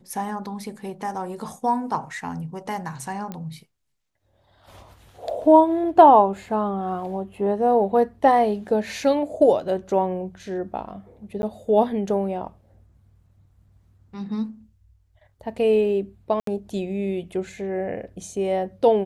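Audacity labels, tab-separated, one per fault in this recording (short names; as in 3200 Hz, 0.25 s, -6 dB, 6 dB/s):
3.320000	3.320000	pop -19 dBFS
11.420000	11.430000	gap
16.400000	16.470000	gap 73 ms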